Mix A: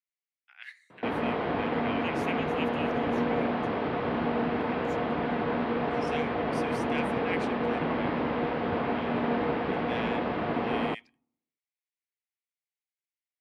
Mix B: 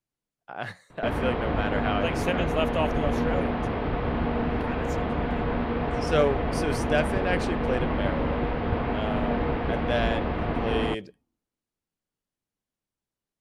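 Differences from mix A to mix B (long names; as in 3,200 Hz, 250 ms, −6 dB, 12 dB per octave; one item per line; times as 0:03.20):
speech: remove four-pole ladder high-pass 1,900 Hz, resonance 65%
master: remove high-pass filter 180 Hz 12 dB per octave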